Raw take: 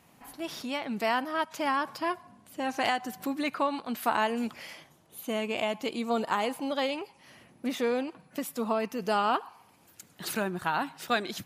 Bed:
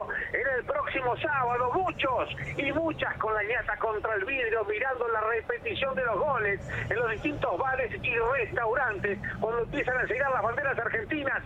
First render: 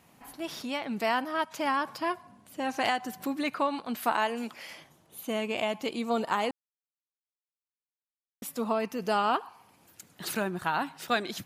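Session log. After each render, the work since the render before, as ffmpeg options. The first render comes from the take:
-filter_complex "[0:a]asettb=1/sr,asplit=3[a][b][c];[a]atrim=end=4.124[d];[b]atrim=start=4.12:end=4.7,asetpts=PTS-STARTPTS,afade=t=in:d=0.004:c=qsin,afade=t=out:st=0.576:d=0.004:c=qsin,highpass=f=320:p=1[e];[c]atrim=start=4.696[f];[d][e]acrossfade=d=0.004:c1=hsin:c2=qsin[g];[g][f]acrossfade=d=0.004:c1=qsin:c2=hsin,asplit=3[h][i][j];[h]atrim=end=6.51,asetpts=PTS-STARTPTS,afade=t=out:st=6.506:d=0.004:c=hsin[k];[i]atrim=start=6.51:end=8.42,asetpts=PTS-STARTPTS,volume=0[l];[j]atrim=start=8.42,asetpts=PTS-STARTPTS,afade=t=in:d=0.004:c=hsin[m];[k][l][m]concat=n=3:v=0:a=1"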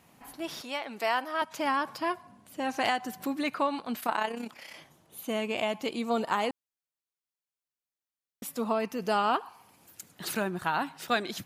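-filter_complex "[0:a]asettb=1/sr,asplit=3[a][b][c];[a]atrim=end=0.614[d];[b]atrim=start=0.61:end=1.42,asetpts=PTS-STARTPTS,afade=t=in:d=0.004:c=qsin,afade=t=out:st=0.806:d=0.004:c=qsin,highpass=410[e];[c]atrim=start=1.416[f];[d][e]acrossfade=d=0.004:c1=hsin:c2=qsin[g];[g][f]acrossfade=d=0.004:c1=qsin:c2=hsin,asettb=1/sr,asplit=3[h][i][j];[h]atrim=end=4.004[k];[i]atrim=start=4:end=4.74,asetpts=PTS-STARTPTS,afade=t=in:d=0.004:c=qsin,afade=t=out:st=0.736:d=0.004:c=qsin,tremolo=f=32:d=0.621[l];[j]atrim=start=4.736[m];[k][l]acrossfade=d=0.004:c1=hsin:c2=qsin[n];[n][m]acrossfade=d=0.004:c1=qsin:c2=hsin,asettb=1/sr,asplit=3[o][p][q];[o]atrim=end=9.464[r];[p]atrim=start=9.46:end=10.12,asetpts=PTS-STARTPTS,afade=t=in:d=0.004:c=qsin,afade=t=out:st=0.656:d=0.004:c=qsin,highshelf=f=5.8k:g=5.5[s];[q]atrim=start=10.116[t];[r][s]acrossfade=d=0.004:c1=hsin:c2=qsin[u];[u][t]acrossfade=d=0.004:c1=qsin:c2=hsin"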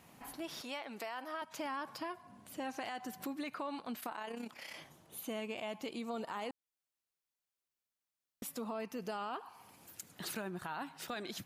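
-af "alimiter=limit=-23dB:level=0:latency=1:release=36,acompressor=threshold=-45dB:ratio=2"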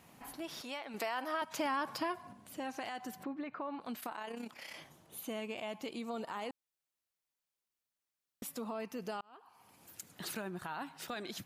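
-filter_complex "[0:a]asettb=1/sr,asplit=3[a][b][c];[a]atrim=end=0.944[d];[b]atrim=start=0.94:end=2.33,asetpts=PTS-STARTPTS,afade=t=in:d=0.004:c=qsin,afade=t=out:st=1.386:d=0.004:c=qsin,acontrast=39[e];[c]atrim=start=2.326[f];[d][e]acrossfade=d=0.004:c1=hsin:c2=qsin[g];[g][f]acrossfade=d=0.004:c1=qsin:c2=hsin,asplit=3[h][i][j];[h]afade=t=out:st=3.22:d=0.02[k];[i]lowpass=1.9k,afade=t=in:st=3.22:d=0.02,afade=t=out:st=3.8:d=0.02[l];[j]afade=t=in:st=3.8:d=0.02[m];[k][l][m]amix=inputs=3:normalize=0,asplit=2[n][o];[n]atrim=end=9.21,asetpts=PTS-STARTPTS,afade=t=out:st=9.206:d=0.004:c=hsin[p];[o]atrim=start=9.21,asetpts=PTS-STARTPTS,afade=t=in:d=0.75[q];[p][q]concat=n=2:v=0:a=1"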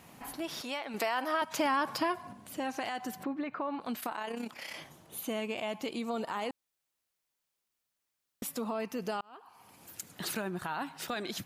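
-af "volume=5.5dB"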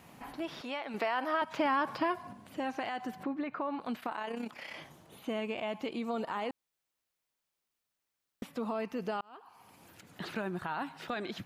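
-filter_complex "[0:a]acrossover=split=3800[a][b];[b]acompressor=threshold=-58dB:ratio=4:attack=1:release=60[c];[a][c]amix=inputs=2:normalize=0,equalizer=f=12k:w=0.32:g=-3.5"

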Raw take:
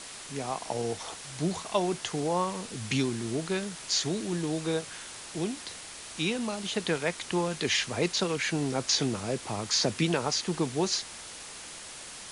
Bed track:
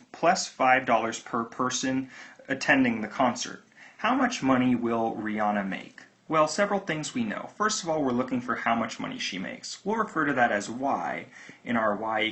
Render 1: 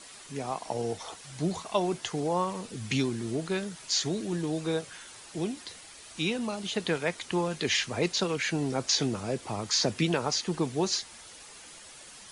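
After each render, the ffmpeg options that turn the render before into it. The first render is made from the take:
-af "afftdn=nr=8:nf=-44"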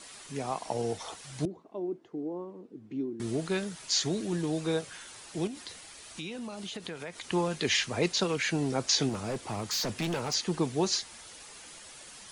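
-filter_complex "[0:a]asettb=1/sr,asplit=3[a][b][c];[a]atrim=end=1.454[d];[b]atrim=start=1.45:end=3.2,asetpts=PTS-STARTPTS,afade=t=in:d=0.004:c=qsin,afade=t=out:st=1.746:d=0.004:c=qsin,bandpass=f=320:t=q:w=3.6[e];[c]atrim=start=3.196[f];[d][e]acrossfade=d=0.004:c1=hsin:c2=qsin[g];[g][f]acrossfade=d=0.004:c1=qsin:c2=hsin,asettb=1/sr,asplit=3[h][i][j];[h]atrim=end=5.474[k];[i]atrim=start=5.47:end=7.26,asetpts=PTS-STARTPTS,afade=t=in:d=0.004:c=qsin,afade=t=out:st=1.786:d=0.004:c=qsin,acompressor=threshold=-36dB:ratio=5:attack=3.2:release=140:knee=1:detection=peak[l];[j]atrim=start=7.256[m];[k][l]acrossfade=d=0.004:c1=hsin:c2=qsin[n];[n][m]acrossfade=d=0.004:c1=qsin:c2=hsin,asettb=1/sr,asplit=3[o][p][q];[o]atrim=end=9.094[r];[p]atrim=start=9.09:end=10.34,asetpts=PTS-STARTPTS,afade=t=in:d=0.004:c=qsin,afade=t=out:st=1.246:d=0.004:c=qsin,asoftclip=type=hard:threshold=-28.5dB[s];[q]atrim=start=10.336[t];[r][s]acrossfade=d=0.004:c1=hsin:c2=qsin[u];[u][t]acrossfade=d=0.004:c1=qsin:c2=hsin"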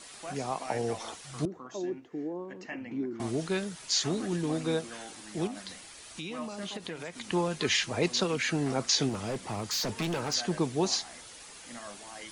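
-filter_complex "[1:a]volume=-19.5dB[a];[0:a][a]amix=inputs=2:normalize=0"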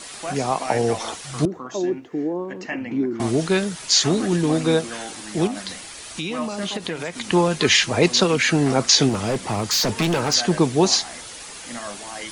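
-af "volume=11dB"

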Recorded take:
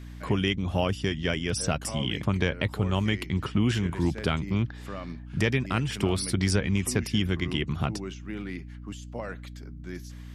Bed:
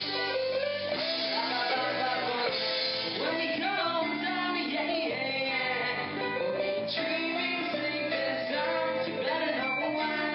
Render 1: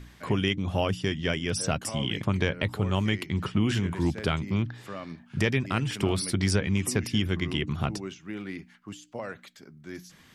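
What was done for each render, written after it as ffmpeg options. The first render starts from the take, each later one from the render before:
-af "bandreject=f=60:t=h:w=4,bandreject=f=120:t=h:w=4,bandreject=f=180:t=h:w=4,bandreject=f=240:t=h:w=4,bandreject=f=300:t=h:w=4"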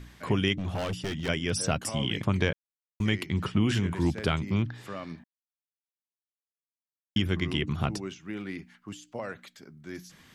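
-filter_complex "[0:a]asettb=1/sr,asplit=3[a][b][c];[a]atrim=end=0.574[d];[b]atrim=start=0.57:end=1.29,asetpts=PTS-STARTPTS,afade=t=in:d=0.004:c=qsin,afade=t=out:st=0.716:d=0.004:c=qsin,volume=28dB,asoftclip=hard,volume=-28dB[e];[c]atrim=start=1.286[f];[d][e]acrossfade=d=0.004:c1=hsin:c2=qsin[g];[g][f]acrossfade=d=0.004:c1=qsin:c2=hsin,asplit=5[h][i][j][k][l];[h]atrim=end=2.53,asetpts=PTS-STARTPTS,afade=t=out:st=2.526:d=0.004:c=hsin[m];[i]atrim=start=2.53:end=3,asetpts=PTS-STARTPTS,volume=0[n];[j]atrim=start=3:end=5.24,asetpts=PTS-STARTPTS,afade=t=in:d=0.004:c=hsin,afade=t=out:st=2.236:d=0.004:c=hsin[o];[k]atrim=start=5.24:end=7.16,asetpts=PTS-STARTPTS,volume=0[p];[l]atrim=start=7.16,asetpts=PTS-STARTPTS,afade=t=in:d=0.004:c=hsin[q];[m][n][o][p][q]concat=n=5:v=0:a=1"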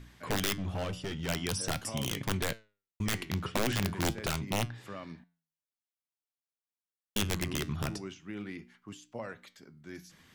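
-af "aeval=exprs='(mod(7.94*val(0)+1,2)-1)/7.94':c=same,flanger=delay=7.2:depth=5.5:regen=83:speed=0.45:shape=triangular"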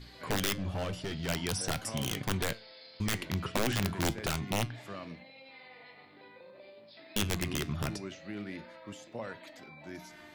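-filter_complex "[1:a]volume=-22.5dB[a];[0:a][a]amix=inputs=2:normalize=0"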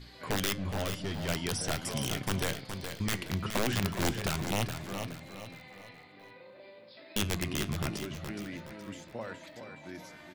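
-af "aecho=1:1:419|838|1257|1676:0.398|0.151|0.0575|0.0218"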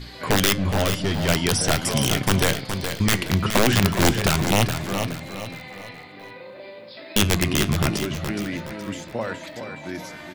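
-af "volume=12dB"

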